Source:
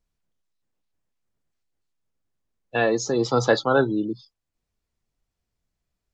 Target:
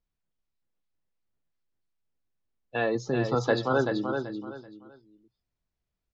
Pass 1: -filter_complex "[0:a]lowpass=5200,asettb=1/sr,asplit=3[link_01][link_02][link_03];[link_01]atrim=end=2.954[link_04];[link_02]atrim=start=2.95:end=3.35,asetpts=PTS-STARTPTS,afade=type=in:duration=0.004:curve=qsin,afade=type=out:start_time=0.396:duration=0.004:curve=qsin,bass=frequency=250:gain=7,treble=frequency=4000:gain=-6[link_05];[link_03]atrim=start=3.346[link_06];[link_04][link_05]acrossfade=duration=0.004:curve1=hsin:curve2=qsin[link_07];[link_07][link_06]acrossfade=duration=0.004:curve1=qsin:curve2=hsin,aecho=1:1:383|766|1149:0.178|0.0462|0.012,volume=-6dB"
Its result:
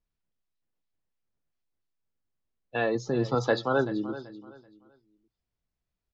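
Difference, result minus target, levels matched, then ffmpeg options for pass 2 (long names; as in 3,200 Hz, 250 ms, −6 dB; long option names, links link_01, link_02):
echo-to-direct −9 dB
-filter_complex "[0:a]lowpass=5200,asettb=1/sr,asplit=3[link_01][link_02][link_03];[link_01]atrim=end=2.954[link_04];[link_02]atrim=start=2.95:end=3.35,asetpts=PTS-STARTPTS,afade=type=in:duration=0.004:curve=qsin,afade=type=out:start_time=0.396:duration=0.004:curve=qsin,bass=frequency=250:gain=7,treble=frequency=4000:gain=-6[link_05];[link_03]atrim=start=3.346[link_06];[link_04][link_05]acrossfade=duration=0.004:curve1=hsin:curve2=qsin[link_07];[link_07][link_06]acrossfade=duration=0.004:curve1=qsin:curve2=hsin,aecho=1:1:383|766|1149:0.501|0.13|0.0339,volume=-6dB"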